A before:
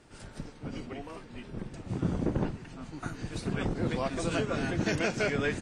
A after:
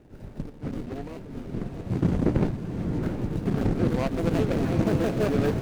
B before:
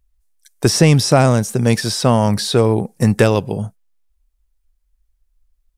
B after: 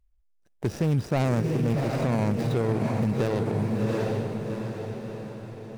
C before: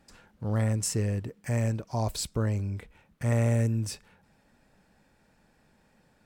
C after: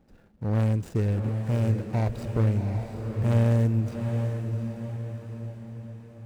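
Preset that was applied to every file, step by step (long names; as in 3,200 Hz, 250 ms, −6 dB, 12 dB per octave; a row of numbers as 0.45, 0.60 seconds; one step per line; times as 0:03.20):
running median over 41 samples
feedback delay with all-pass diffusion 745 ms, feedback 50%, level −6 dB
boost into a limiter +11.5 dB
loudness normalisation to −27 LKFS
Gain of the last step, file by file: −4.5, −16.5, −8.5 decibels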